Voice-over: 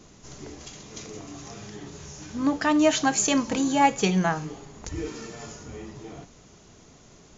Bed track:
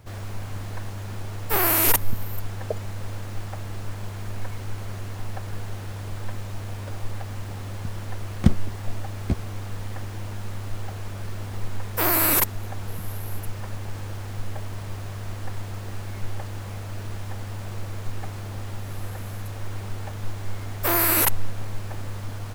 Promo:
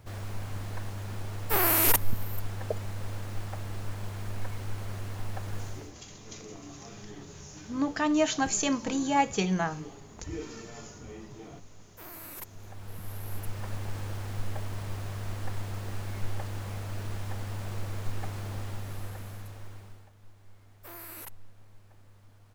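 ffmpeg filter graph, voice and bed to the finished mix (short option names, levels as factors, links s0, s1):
-filter_complex "[0:a]adelay=5350,volume=0.562[s0];[1:a]volume=8.41,afade=t=out:st=5.6:d=0.33:silence=0.0891251,afade=t=in:st=12.36:d=1.39:silence=0.0794328,afade=t=out:st=18.52:d=1.58:silence=0.0841395[s1];[s0][s1]amix=inputs=2:normalize=0"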